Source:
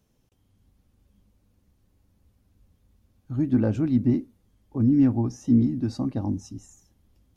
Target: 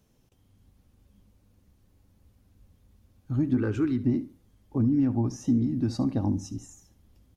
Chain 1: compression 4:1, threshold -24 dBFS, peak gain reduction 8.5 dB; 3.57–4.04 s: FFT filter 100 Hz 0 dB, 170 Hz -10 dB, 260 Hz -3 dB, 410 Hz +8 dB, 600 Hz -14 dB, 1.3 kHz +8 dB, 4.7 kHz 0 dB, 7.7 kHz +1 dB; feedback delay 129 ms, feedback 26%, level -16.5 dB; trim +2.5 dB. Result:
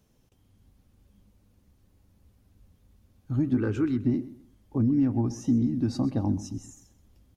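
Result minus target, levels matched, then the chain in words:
echo 58 ms late
compression 4:1, threshold -24 dBFS, peak gain reduction 8.5 dB; 3.57–4.04 s: FFT filter 100 Hz 0 dB, 170 Hz -10 dB, 260 Hz -3 dB, 410 Hz +8 dB, 600 Hz -14 dB, 1.3 kHz +8 dB, 4.7 kHz 0 dB, 7.7 kHz +1 dB; feedback delay 71 ms, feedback 26%, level -16.5 dB; trim +2.5 dB

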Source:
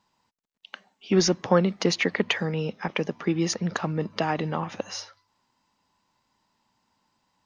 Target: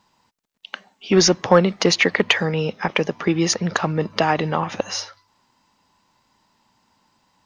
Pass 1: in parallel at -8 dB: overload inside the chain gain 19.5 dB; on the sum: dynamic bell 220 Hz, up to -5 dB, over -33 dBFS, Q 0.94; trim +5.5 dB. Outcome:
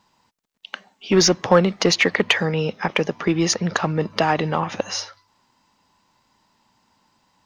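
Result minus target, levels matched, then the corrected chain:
overload inside the chain: distortion +10 dB
in parallel at -8 dB: overload inside the chain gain 13 dB; on the sum: dynamic bell 220 Hz, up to -5 dB, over -33 dBFS, Q 0.94; trim +5.5 dB

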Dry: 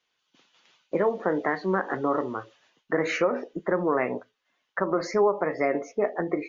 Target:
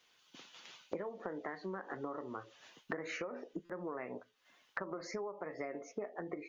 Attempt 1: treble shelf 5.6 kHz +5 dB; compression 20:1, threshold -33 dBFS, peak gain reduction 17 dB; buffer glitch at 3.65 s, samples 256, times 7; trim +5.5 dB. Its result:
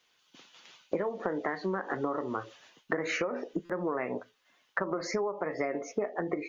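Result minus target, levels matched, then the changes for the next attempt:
compression: peak gain reduction -10 dB
change: compression 20:1, threshold -43.5 dBFS, peak gain reduction 27 dB

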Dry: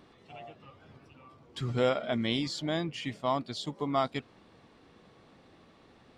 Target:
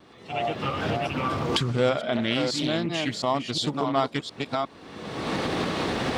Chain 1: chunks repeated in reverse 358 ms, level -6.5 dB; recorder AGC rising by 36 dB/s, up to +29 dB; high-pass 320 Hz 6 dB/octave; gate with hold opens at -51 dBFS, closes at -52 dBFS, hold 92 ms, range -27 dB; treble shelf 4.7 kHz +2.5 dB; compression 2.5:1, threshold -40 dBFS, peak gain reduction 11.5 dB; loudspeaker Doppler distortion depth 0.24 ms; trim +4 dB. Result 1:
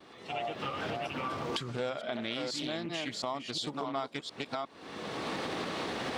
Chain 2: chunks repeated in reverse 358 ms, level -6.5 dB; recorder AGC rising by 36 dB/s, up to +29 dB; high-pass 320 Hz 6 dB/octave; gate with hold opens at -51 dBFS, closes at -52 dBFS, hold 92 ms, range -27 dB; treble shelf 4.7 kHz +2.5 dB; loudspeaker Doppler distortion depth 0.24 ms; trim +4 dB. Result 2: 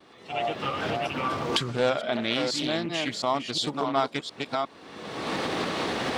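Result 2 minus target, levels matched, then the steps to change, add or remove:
125 Hz band -5.5 dB
change: high-pass 95 Hz 6 dB/octave

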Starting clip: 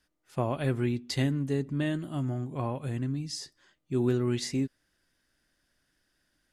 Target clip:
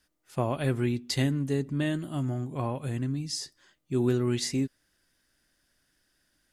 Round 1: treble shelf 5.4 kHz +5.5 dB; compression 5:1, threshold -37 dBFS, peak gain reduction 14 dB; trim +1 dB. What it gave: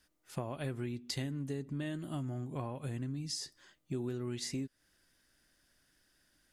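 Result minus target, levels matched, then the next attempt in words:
compression: peak gain reduction +14 dB
treble shelf 5.4 kHz +5.5 dB; trim +1 dB

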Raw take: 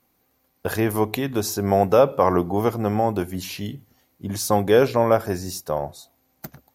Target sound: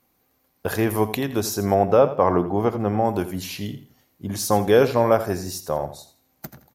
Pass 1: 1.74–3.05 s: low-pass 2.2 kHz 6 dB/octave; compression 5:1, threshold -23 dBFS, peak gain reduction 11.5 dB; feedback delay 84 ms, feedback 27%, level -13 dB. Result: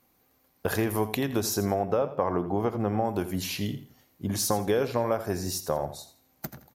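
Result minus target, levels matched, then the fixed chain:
compression: peak gain reduction +11.5 dB
1.74–3.05 s: low-pass 2.2 kHz 6 dB/octave; feedback delay 84 ms, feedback 27%, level -13 dB

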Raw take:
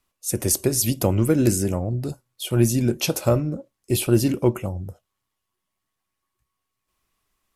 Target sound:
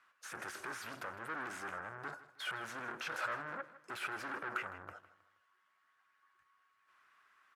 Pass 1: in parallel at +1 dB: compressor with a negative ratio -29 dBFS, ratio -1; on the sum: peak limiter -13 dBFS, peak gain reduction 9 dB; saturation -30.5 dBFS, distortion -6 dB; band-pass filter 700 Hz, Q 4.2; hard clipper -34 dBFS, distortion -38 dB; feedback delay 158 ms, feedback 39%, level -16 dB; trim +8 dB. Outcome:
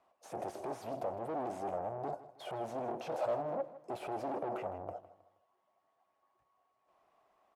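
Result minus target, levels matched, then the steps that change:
2 kHz band -17.5 dB
change: band-pass filter 1.5 kHz, Q 4.2

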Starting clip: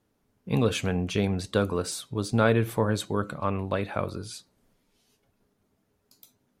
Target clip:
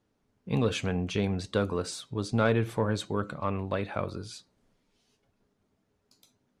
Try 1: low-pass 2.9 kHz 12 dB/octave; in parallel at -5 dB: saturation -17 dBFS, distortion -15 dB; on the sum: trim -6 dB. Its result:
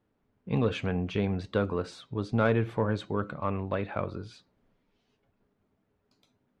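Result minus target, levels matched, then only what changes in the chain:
8 kHz band -13.5 dB
change: low-pass 7.6 kHz 12 dB/octave

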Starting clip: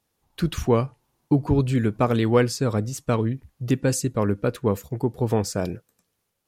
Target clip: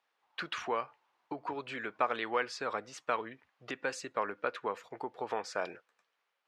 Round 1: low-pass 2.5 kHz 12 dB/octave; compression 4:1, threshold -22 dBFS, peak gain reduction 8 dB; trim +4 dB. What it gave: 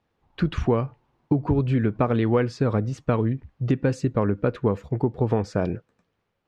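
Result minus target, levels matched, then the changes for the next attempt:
1 kHz band -9.5 dB
add after compression: high-pass 960 Hz 12 dB/octave

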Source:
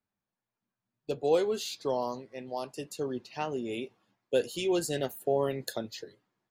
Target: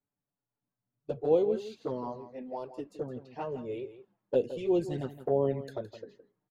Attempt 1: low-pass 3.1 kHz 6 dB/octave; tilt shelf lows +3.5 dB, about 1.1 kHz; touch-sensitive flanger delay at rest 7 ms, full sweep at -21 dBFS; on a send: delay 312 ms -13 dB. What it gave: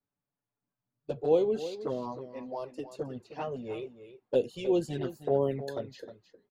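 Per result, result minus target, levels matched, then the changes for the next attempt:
echo 146 ms late; 4 kHz band +5.0 dB
change: delay 166 ms -13 dB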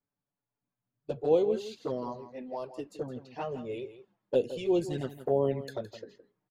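4 kHz band +5.0 dB
change: low-pass 1.4 kHz 6 dB/octave

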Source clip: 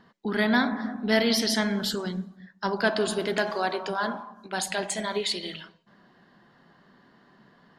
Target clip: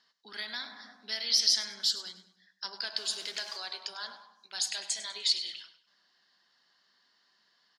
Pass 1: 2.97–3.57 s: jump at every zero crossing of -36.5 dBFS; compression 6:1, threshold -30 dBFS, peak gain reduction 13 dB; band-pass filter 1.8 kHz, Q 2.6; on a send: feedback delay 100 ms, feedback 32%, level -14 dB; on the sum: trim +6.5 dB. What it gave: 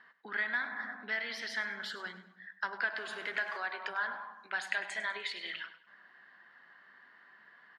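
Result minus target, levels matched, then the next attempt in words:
2 kHz band +15.5 dB; compression: peak gain reduction +7 dB
2.97–3.57 s: jump at every zero crossing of -36.5 dBFS; compression 6:1, threshold -21.5 dBFS, peak gain reduction 6 dB; band-pass filter 5.2 kHz, Q 2.6; on a send: feedback delay 100 ms, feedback 32%, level -14 dB; on the sum: trim +6.5 dB

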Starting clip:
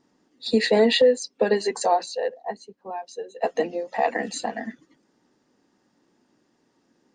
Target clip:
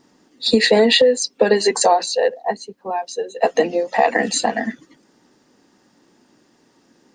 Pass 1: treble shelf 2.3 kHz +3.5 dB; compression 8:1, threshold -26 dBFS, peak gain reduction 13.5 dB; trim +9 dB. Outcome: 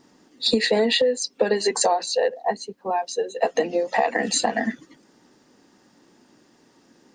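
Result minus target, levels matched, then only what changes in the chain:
compression: peak gain reduction +6.5 dB
change: compression 8:1, threshold -18.5 dBFS, peak gain reduction 7 dB

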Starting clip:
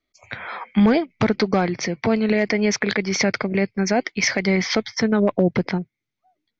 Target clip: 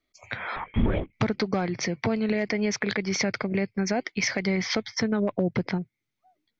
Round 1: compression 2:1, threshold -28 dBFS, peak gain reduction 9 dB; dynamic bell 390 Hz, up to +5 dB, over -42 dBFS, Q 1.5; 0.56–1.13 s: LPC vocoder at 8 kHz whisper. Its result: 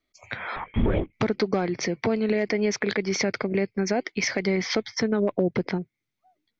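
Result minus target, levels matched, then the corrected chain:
500 Hz band +2.5 dB
compression 2:1, threshold -28 dBFS, peak gain reduction 9 dB; dynamic bell 110 Hz, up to +5 dB, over -42 dBFS, Q 1.5; 0.56–1.13 s: LPC vocoder at 8 kHz whisper

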